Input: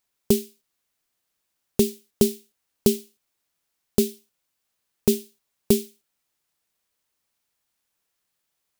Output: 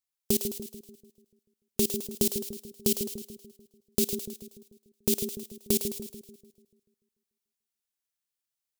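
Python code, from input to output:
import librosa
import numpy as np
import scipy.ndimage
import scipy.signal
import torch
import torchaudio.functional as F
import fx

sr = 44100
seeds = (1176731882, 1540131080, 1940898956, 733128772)

y = fx.high_shelf(x, sr, hz=2300.0, db=9.5)
y = fx.level_steps(y, sr, step_db=22)
y = fx.low_shelf(y, sr, hz=180.0, db=3.5)
y = fx.echo_split(y, sr, split_hz=510.0, low_ms=146, high_ms=106, feedback_pct=52, wet_db=-7)
y = y * 10.0 ** (-1.5 / 20.0)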